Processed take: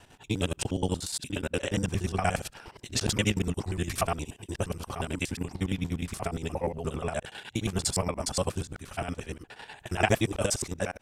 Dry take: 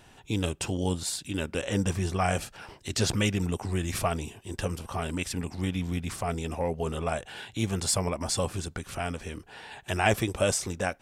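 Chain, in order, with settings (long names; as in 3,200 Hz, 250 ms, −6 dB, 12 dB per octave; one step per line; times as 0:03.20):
reversed piece by piece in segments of 59 ms
square-wave tremolo 9.8 Hz, depth 60%, duty 50%
level +1.5 dB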